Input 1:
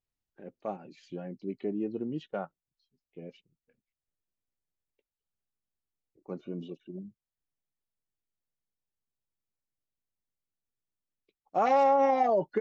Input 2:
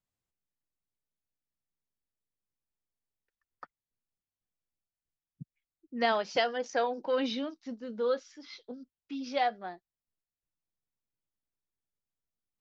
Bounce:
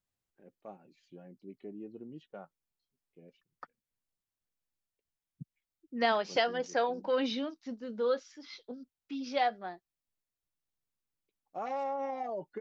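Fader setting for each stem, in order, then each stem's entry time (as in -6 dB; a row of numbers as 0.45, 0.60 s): -12.0, -0.5 dB; 0.00, 0.00 s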